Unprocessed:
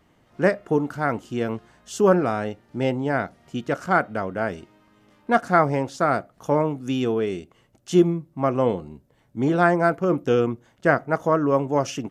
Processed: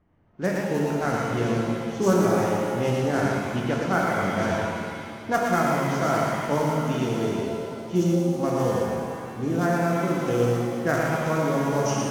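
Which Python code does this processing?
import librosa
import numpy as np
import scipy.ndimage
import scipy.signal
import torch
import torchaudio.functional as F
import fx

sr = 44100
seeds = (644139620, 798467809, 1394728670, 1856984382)

p1 = fx.block_float(x, sr, bits=5)
p2 = p1 + fx.echo_single(p1, sr, ms=116, db=-3.5, dry=0)
p3 = fx.env_lowpass(p2, sr, base_hz=1700.0, full_db=-16.0)
p4 = fx.low_shelf(p3, sr, hz=170.0, db=8.0)
p5 = fx.rider(p4, sr, range_db=10, speed_s=0.5)
p6 = fx.peak_eq(p5, sr, hz=6000.0, db=9.5, octaves=0.39)
p7 = fx.rev_shimmer(p6, sr, seeds[0], rt60_s=2.4, semitones=7, shimmer_db=-8, drr_db=-1.0)
y = p7 * 10.0 ** (-8.5 / 20.0)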